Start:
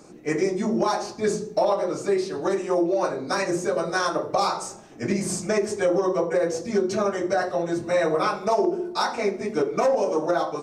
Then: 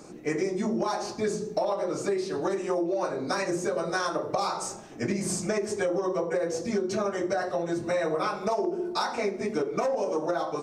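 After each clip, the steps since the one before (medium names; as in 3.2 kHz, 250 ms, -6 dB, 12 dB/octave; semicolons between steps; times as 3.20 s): compression 3:1, threshold -28 dBFS, peak gain reduction 9 dB; trim +1.5 dB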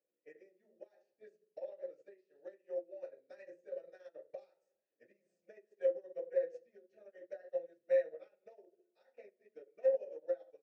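vowel filter e; upward expansion 2.5:1, over -47 dBFS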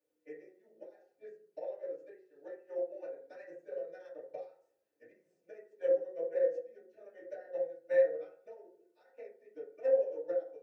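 FDN reverb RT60 0.44 s, low-frequency decay 0.9×, high-frequency decay 0.3×, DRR -4.5 dB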